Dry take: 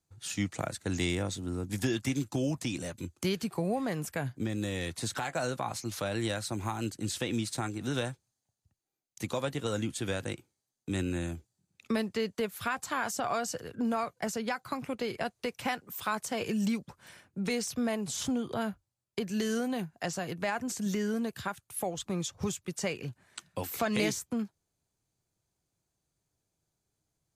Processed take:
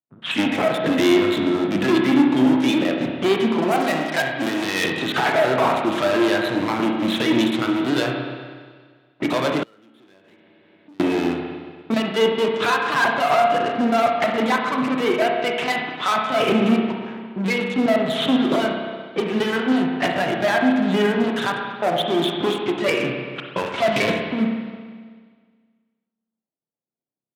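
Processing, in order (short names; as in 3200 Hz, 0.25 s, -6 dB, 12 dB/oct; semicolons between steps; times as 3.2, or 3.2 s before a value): bell 510 Hz -2.5 dB 0.27 oct; comb 3.1 ms, depth 41%; LPC vocoder at 8 kHz pitch kept; sample leveller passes 5; low-pass opened by the level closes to 860 Hz, open at -20 dBFS; 3.71–4.84 tilt +2.5 dB/oct; spring tank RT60 1.7 s, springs 31/58 ms, chirp 45 ms, DRR 1 dB; 9.63–11 compressor 12:1, threshold -46 dBFS, peak gain reduction 34.5 dB; HPF 150 Hz 24 dB/oct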